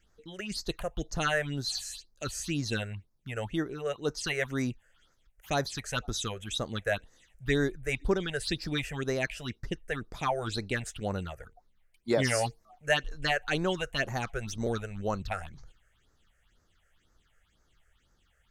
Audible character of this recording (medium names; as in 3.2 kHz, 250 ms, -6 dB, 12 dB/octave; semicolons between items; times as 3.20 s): phasing stages 6, 2 Hz, lowest notch 250–3000 Hz